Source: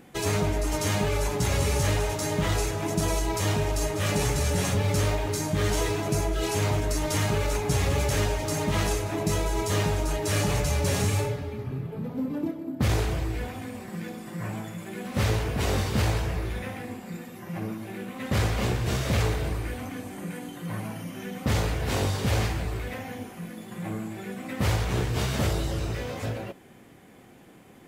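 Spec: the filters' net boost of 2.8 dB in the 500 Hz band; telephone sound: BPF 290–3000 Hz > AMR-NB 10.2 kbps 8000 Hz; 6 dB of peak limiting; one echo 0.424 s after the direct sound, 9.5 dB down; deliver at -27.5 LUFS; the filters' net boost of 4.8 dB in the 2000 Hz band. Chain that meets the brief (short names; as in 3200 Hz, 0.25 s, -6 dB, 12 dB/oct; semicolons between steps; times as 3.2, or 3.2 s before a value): bell 500 Hz +4 dB; bell 2000 Hz +6.5 dB; limiter -17.5 dBFS; BPF 290–3000 Hz; echo 0.424 s -9.5 dB; gain +5 dB; AMR-NB 10.2 kbps 8000 Hz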